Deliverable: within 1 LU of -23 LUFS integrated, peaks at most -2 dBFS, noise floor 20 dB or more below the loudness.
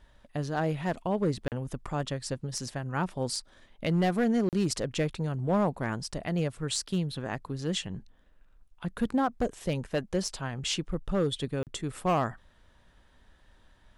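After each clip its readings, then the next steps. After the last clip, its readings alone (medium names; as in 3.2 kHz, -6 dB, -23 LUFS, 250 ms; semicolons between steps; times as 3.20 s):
clipped samples 0.7%; clipping level -20.0 dBFS; dropouts 3; longest dropout 38 ms; loudness -31.0 LUFS; peak level -20.0 dBFS; loudness target -23.0 LUFS
-> clip repair -20 dBFS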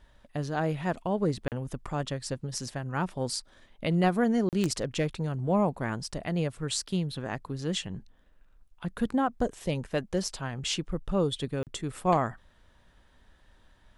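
clipped samples 0.0%; dropouts 3; longest dropout 38 ms
-> interpolate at 1.48/4.49/11.63 s, 38 ms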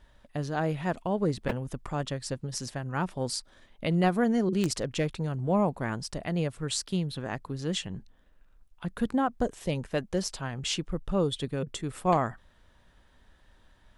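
dropouts 0; loudness -30.5 LUFS; peak level -11.0 dBFS; loudness target -23.0 LUFS
-> trim +7.5 dB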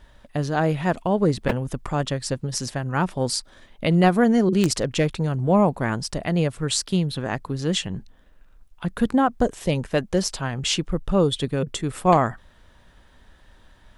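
loudness -23.0 LUFS; peak level -3.5 dBFS; noise floor -53 dBFS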